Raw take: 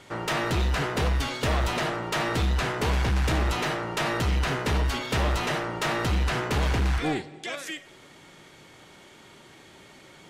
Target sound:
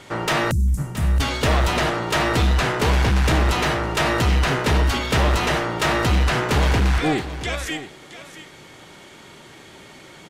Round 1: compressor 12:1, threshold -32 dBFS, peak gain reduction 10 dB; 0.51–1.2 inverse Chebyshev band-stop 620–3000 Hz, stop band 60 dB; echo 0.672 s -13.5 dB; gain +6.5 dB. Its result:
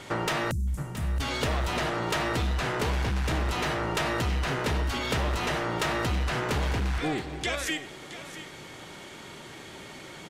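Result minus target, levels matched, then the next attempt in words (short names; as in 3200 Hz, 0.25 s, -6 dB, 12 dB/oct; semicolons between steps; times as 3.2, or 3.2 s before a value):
compressor: peak gain reduction +10 dB
0.51–1.2 inverse Chebyshev band-stop 620–3000 Hz, stop band 60 dB; echo 0.672 s -13.5 dB; gain +6.5 dB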